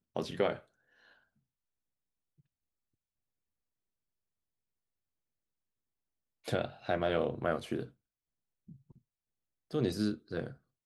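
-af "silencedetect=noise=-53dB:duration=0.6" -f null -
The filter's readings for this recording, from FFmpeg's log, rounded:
silence_start: 1.11
silence_end: 6.45 | silence_duration: 5.33
silence_start: 7.90
silence_end: 8.69 | silence_duration: 0.78
silence_start: 8.98
silence_end: 9.71 | silence_duration: 0.73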